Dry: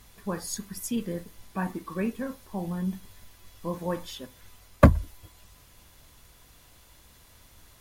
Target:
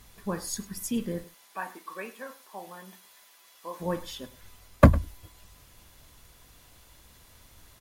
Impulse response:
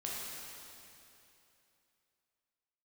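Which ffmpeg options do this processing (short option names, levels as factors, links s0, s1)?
-filter_complex "[0:a]asettb=1/sr,asplit=3[s0][s1][s2];[s0]atrim=end=1.244[s3];[s1]atrim=start=1.24:end=3.8,asetpts=PTS-STARTPTS,afade=t=in:d=0.004:c=qsin,afade=t=out:st=2.556:d=0.004:c=qsin,highpass=650[s4];[s2]atrim=start=3.796[s5];[s3][s4]acrossfade=d=0.004:c1=hsin:c2=qsin[s6];[s6][s5]acrossfade=d=0.004:c1=qsin:c2=hsin,aecho=1:1:103:0.112"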